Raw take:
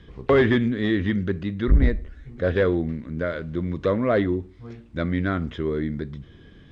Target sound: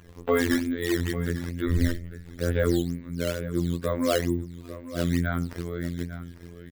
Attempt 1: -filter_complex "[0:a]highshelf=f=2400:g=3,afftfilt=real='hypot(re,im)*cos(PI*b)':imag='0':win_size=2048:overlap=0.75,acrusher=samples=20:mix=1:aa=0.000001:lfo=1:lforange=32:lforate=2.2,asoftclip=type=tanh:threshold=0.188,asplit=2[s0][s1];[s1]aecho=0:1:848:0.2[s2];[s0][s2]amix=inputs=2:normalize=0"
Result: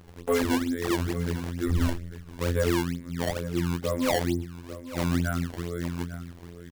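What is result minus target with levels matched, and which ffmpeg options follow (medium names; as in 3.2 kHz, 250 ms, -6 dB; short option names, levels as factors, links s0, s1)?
saturation: distortion +8 dB; decimation with a swept rate: distortion +7 dB
-filter_complex "[0:a]highshelf=f=2400:g=3,afftfilt=real='hypot(re,im)*cos(PI*b)':imag='0':win_size=2048:overlap=0.75,acrusher=samples=7:mix=1:aa=0.000001:lfo=1:lforange=11.2:lforate=2.2,asoftclip=type=tanh:threshold=0.398,asplit=2[s0][s1];[s1]aecho=0:1:848:0.2[s2];[s0][s2]amix=inputs=2:normalize=0"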